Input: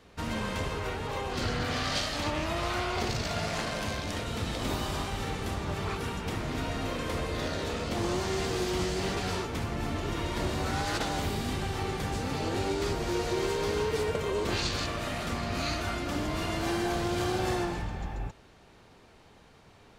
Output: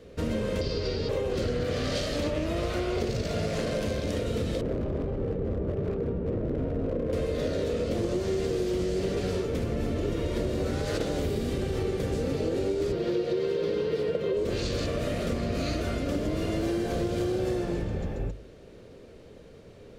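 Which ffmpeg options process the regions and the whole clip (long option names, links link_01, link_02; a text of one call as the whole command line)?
ffmpeg -i in.wav -filter_complex "[0:a]asettb=1/sr,asplit=3[link_01][link_02][link_03];[link_01]atrim=end=0.614[link_04];[link_02]atrim=start=0.61:end=1.09,asetpts=PTS-STARTPTS,afade=type=in:duration=0.004:curve=qsin,afade=type=out:start_time=0.476:duration=0.004:curve=qsin,acrossover=split=340|3000[link_05][link_06][link_07];[link_06]acompressor=threshold=-41dB:ratio=2:attack=3.2:release=140:knee=2.83:detection=peak[link_08];[link_05][link_08][link_07]amix=inputs=3:normalize=0,lowpass=frequency=4800:width_type=q:width=9.6[link_09];[link_03]atrim=start=1.086[link_10];[link_04][link_09]acrossfade=duration=0.004:curve1=hsin:curve2=qsin[link_11];[link_11][link_10]acrossfade=duration=0.004:curve1=qsin:curve2=hsin,asettb=1/sr,asplit=3[link_12][link_13][link_14];[link_12]atrim=end=4.614[link_15];[link_13]atrim=start=4.61:end=7.13,asetpts=PTS-STARTPTS,afade=type=in:duration=0.004:curve=qsin,afade=type=out:start_time=2.516:duration=0.004:curve=qsin,adynamicsmooth=sensitivity=1:basefreq=590,aeval=exprs='0.0335*(abs(mod(val(0)/0.0335+3,4)-2)-1)':channel_layout=same[link_16];[link_14]atrim=start=7.126[link_17];[link_15][link_16]acrossfade=duration=0.004:curve1=hsin:curve2=qsin[link_18];[link_18][link_17]acrossfade=duration=0.004:curve1=qsin:curve2=hsin,asettb=1/sr,asplit=3[link_19][link_20][link_21];[link_19]atrim=end=12.924[link_22];[link_20]atrim=start=12.92:end=14.37,asetpts=PTS-STARTPTS,afade=type=in:duration=0.004:curve=qsin,afade=type=out:start_time=1.446:duration=0.004:curve=qsin,highpass=110,highshelf=frequency=5500:width_type=q:width=1.5:gain=-8.5,aecho=1:1:5.8:0.42,atrim=end_sample=63945[link_23];[link_21]atrim=start=14.366[link_24];[link_22][link_23]acrossfade=duration=0.004:curve1=hsin:curve2=qsin[link_25];[link_25][link_24]acrossfade=duration=0.004:curve1=qsin:curve2=hsin,lowshelf=frequency=660:width_type=q:width=3:gain=7.5,bandreject=frequency=50:width_type=h:width=6,bandreject=frequency=100:width_type=h:width=6,bandreject=frequency=150:width_type=h:width=6,bandreject=frequency=200:width_type=h:width=6,bandreject=frequency=250:width_type=h:width=6,bandreject=frequency=300:width_type=h:width=6,bandreject=frequency=350:width_type=h:width=6,acompressor=threshold=-25dB:ratio=6" out.wav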